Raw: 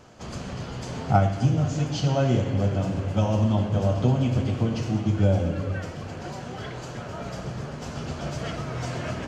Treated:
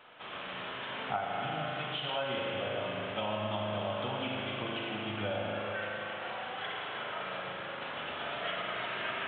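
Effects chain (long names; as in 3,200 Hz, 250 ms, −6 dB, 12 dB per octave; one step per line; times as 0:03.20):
high-pass filter 520 Hz 6 dB per octave
tilt shelving filter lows −7.5 dB, about 730 Hz
spring reverb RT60 2.9 s, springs 38 ms, chirp 25 ms, DRR −1 dB
downward compressor 6 to 1, threshold −26 dBFS, peak gain reduction 9.5 dB
level −4 dB
mu-law 64 kbit/s 8,000 Hz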